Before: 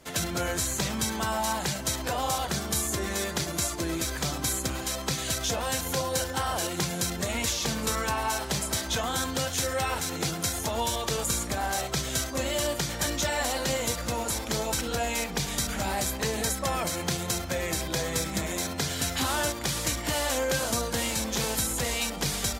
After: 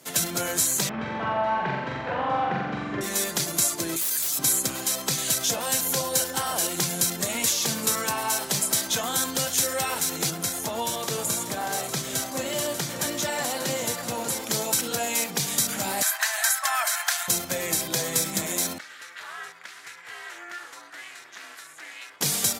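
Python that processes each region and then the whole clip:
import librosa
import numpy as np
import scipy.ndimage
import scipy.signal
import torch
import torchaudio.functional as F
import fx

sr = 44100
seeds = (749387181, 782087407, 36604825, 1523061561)

y = fx.chain(x, sr, fx.lowpass(hz=2300.0, slope=24),
    fx.room_flutter(wall_m=7.6, rt60_s=1.2), at=(0.89, 3.01))
y = fx.chain(y, sr, fx.pre_emphasis(coefficient=0.9),
    fx.overflow_wrap(gain_db=29.5),
    fx.env_flatten(amount_pct=100), at=(3.96, 4.39))
y = fx.chain(y, sr, fx.high_shelf(hz=3400.0, db=-6.5),
    fx.echo_single(ms=589, db=-10.5), at=(10.3, 14.44))
y = fx.chain(y, sr, fx.cheby1_highpass(hz=620.0, order=8),
    fx.peak_eq(hz=1600.0, db=13.5, octaves=0.69), at=(16.02, 17.28))
y = fx.chain(y, sr, fx.bandpass_q(hz=1700.0, q=2.8),
    fx.ring_mod(carrier_hz=180.0), at=(18.78, 22.21))
y = scipy.signal.sosfilt(scipy.signal.butter(4, 120.0, 'highpass', fs=sr, output='sos'), y)
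y = fx.peak_eq(y, sr, hz=14000.0, db=11.0, octaves=1.6)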